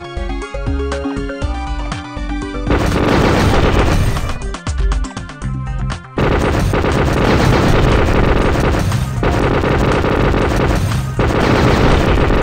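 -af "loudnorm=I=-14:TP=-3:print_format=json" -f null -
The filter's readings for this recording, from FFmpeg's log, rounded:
"input_i" : "-15.1",
"input_tp" : "-1.4",
"input_lra" : "4.4",
"input_thresh" : "-25.2",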